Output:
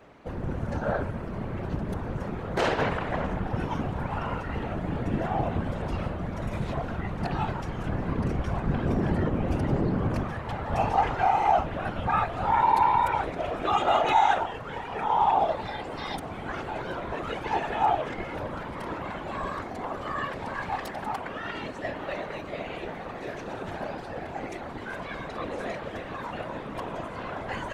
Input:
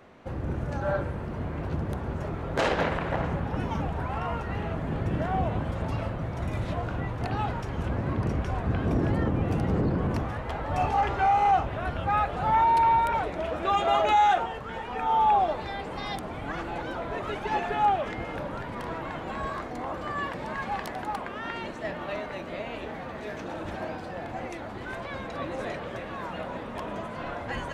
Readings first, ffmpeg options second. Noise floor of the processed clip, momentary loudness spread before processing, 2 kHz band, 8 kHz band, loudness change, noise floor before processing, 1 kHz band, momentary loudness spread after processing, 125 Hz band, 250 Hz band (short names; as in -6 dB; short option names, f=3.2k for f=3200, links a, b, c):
-38 dBFS, 13 LU, 0.0 dB, n/a, -0.5 dB, -38 dBFS, -0.5 dB, 13 LU, -1.0 dB, +0.5 dB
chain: -af "afftfilt=real='hypot(re,im)*cos(2*PI*random(0))':imag='hypot(re,im)*sin(2*PI*random(1))':win_size=512:overlap=0.75,volume=6dB"